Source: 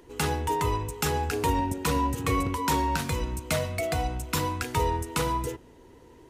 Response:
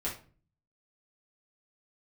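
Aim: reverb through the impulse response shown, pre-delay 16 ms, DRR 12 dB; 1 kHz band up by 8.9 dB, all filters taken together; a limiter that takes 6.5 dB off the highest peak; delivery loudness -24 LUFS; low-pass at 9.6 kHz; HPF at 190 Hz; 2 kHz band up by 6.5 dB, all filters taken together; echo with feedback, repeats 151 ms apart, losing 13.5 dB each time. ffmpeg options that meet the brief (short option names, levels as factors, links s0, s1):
-filter_complex "[0:a]highpass=190,lowpass=9600,equalizer=f=1000:t=o:g=8.5,equalizer=f=2000:t=o:g=5.5,alimiter=limit=0.178:level=0:latency=1,aecho=1:1:151|302:0.211|0.0444,asplit=2[s0][s1];[1:a]atrim=start_sample=2205,adelay=16[s2];[s1][s2]afir=irnorm=-1:irlink=0,volume=0.158[s3];[s0][s3]amix=inputs=2:normalize=0,volume=0.944"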